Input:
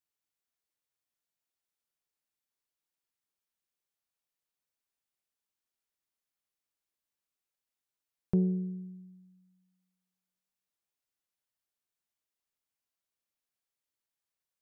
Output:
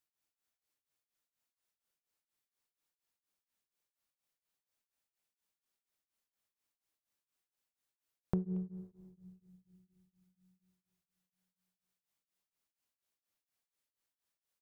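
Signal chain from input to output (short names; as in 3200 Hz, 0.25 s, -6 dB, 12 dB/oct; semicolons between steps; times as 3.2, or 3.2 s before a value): compressor 4:1, threshold -34 dBFS, peak gain reduction 10 dB; speakerphone echo 0.23 s, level -20 dB; on a send at -13 dB: reverb RT60 2.4 s, pre-delay 3 ms; on the sum: beating tremolo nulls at 4.2 Hz; gain +3 dB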